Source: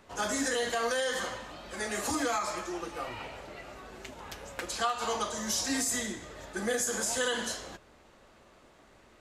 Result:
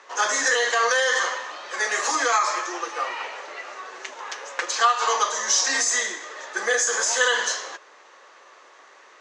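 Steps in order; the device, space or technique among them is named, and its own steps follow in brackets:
phone speaker on a table (loudspeaker in its box 440–6,800 Hz, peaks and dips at 650 Hz −5 dB, 1,100 Hz +6 dB, 1,800 Hz +6 dB, 6,200 Hz +7 dB)
level +8.5 dB

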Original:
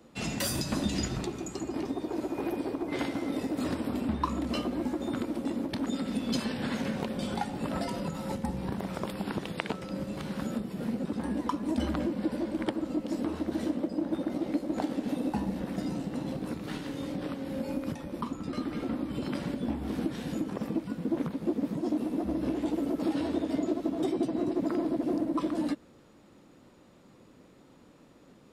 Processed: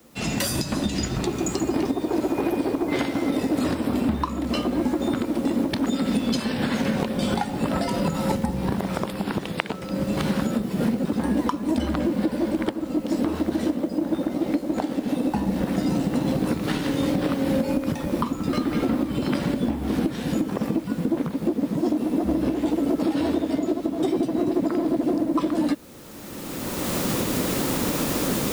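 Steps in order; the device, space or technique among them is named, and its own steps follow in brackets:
cheap recorder with automatic gain (white noise bed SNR 30 dB; camcorder AGC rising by 20 dB per second)
level +1.5 dB

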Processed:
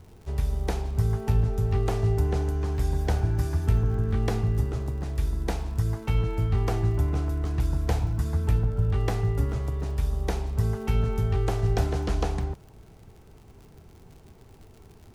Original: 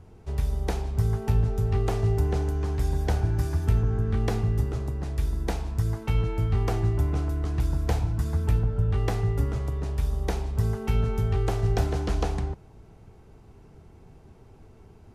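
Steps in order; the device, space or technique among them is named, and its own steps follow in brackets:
vinyl LP (surface crackle 77 per second −43 dBFS; pink noise bed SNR 43 dB)

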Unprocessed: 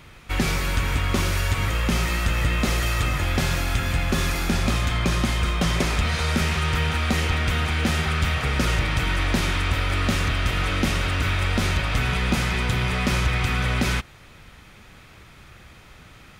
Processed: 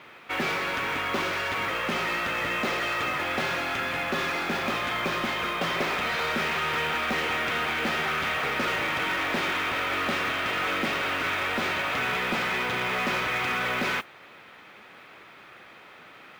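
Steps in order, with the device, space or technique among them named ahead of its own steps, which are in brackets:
carbon microphone (band-pass filter 360–3,000 Hz; soft clipping −23.5 dBFS, distortion −16 dB; noise that follows the level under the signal 23 dB)
level +3 dB

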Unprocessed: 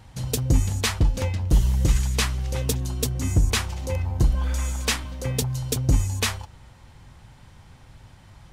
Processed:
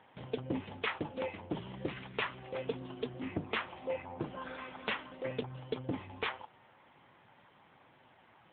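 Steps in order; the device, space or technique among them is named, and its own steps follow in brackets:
telephone (band-pass filter 320–3,200 Hz; level −3 dB; AMR narrowband 7.95 kbit/s 8,000 Hz)

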